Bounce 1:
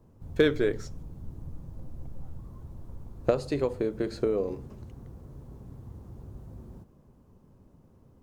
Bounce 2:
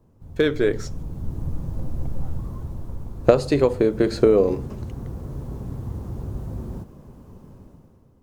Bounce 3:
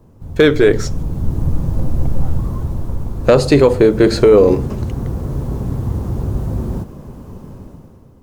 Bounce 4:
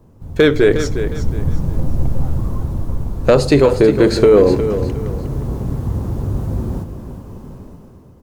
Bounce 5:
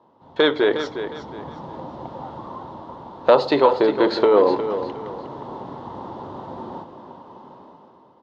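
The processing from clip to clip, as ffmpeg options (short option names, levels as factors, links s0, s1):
-af "dynaudnorm=f=100:g=13:m=4.73"
-af "apsyclip=5.01,volume=0.708"
-af "aecho=1:1:359|718|1077:0.299|0.0925|0.0287,volume=0.891"
-af "highpass=440,equalizer=f=440:t=q:w=4:g=-4,equalizer=f=920:t=q:w=4:g=10,equalizer=f=1600:t=q:w=4:g=-4,equalizer=f=2400:t=q:w=4:g=-9,equalizer=f=3500:t=q:w=4:g=4,lowpass=f=3900:w=0.5412,lowpass=f=3900:w=1.3066"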